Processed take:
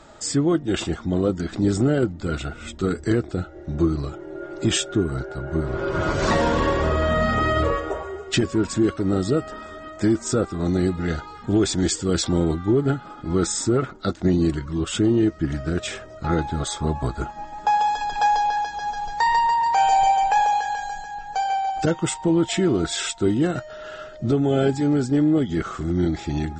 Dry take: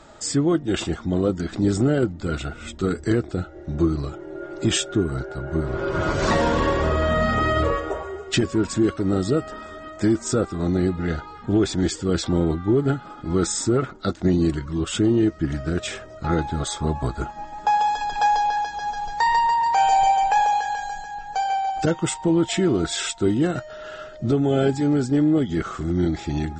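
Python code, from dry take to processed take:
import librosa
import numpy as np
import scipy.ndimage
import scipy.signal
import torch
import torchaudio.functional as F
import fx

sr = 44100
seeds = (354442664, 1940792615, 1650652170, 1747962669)

y = fx.high_shelf(x, sr, hz=5800.0, db=10.5, at=(10.65, 12.72))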